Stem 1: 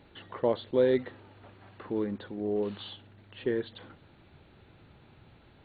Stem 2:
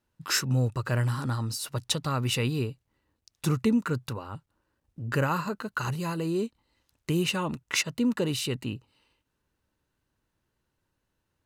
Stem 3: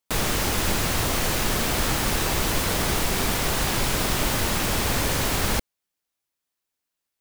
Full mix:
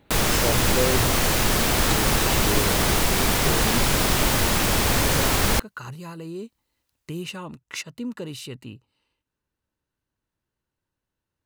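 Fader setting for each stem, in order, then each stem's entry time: −1.0, −6.0, +3.0 decibels; 0.00, 0.00, 0.00 seconds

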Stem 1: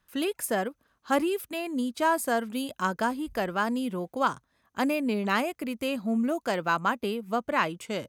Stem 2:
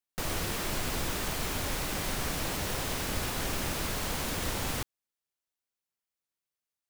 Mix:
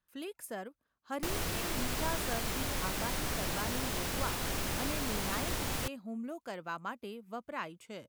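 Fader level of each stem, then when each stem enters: −13.5, −2.5 decibels; 0.00, 1.05 seconds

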